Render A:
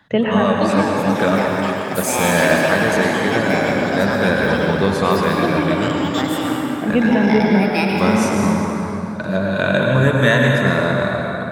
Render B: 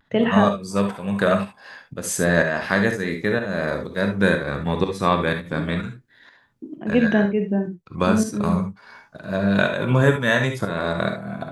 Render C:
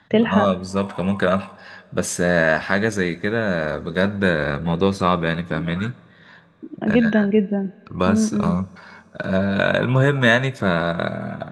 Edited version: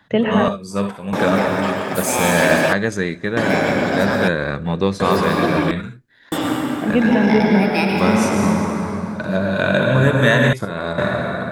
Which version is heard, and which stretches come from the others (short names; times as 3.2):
A
0.48–1.13 from B
2.73–3.37 from C
4.28–5 from C
5.71–6.32 from B
10.53–10.98 from B